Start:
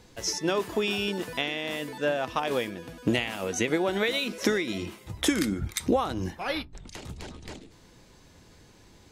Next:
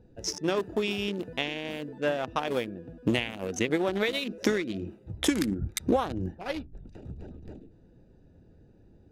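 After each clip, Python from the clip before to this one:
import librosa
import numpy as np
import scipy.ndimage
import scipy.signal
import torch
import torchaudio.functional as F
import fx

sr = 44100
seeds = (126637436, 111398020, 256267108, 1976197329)

y = fx.wiener(x, sr, points=41)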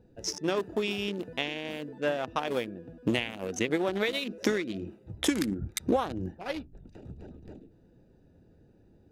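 y = fx.low_shelf(x, sr, hz=87.0, db=-6.0)
y = y * librosa.db_to_amplitude(-1.0)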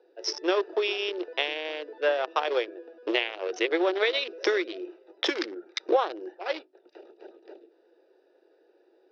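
y = scipy.signal.sosfilt(scipy.signal.cheby1(5, 1.0, [350.0, 5500.0], 'bandpass', fs=sr, output='sos'), x)
y = y * librosa.db_to_amplitude(5.0)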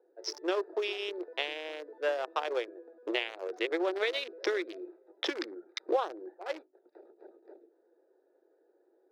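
y = fx.wiener(x, sr, points=15)
y = y * librosa.db_to_amplitude(-5.5)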